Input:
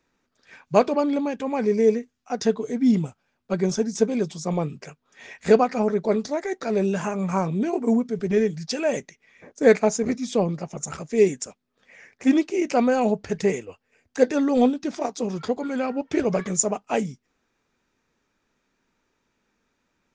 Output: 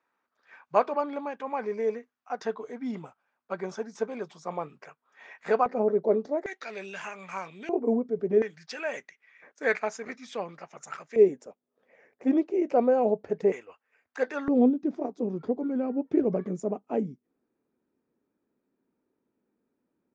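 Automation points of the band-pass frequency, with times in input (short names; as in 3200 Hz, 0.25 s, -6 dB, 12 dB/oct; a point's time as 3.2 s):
band-pass, Q 1.3
1100 Hz
from 5.66 s 470 Hz
from 6.46 s 2400 Hz
from 7.69 s 470 Hz
from 8.42 s 1600 Hz
from 11.16 s 500 Hz
from 13.52 s 1300 Hz
from 14.48 s 310 Hz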